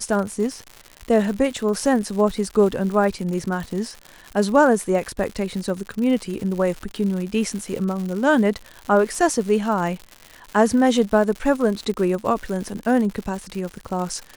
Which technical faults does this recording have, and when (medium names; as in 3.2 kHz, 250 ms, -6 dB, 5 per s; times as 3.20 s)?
crackle 160 per s -28 dBFS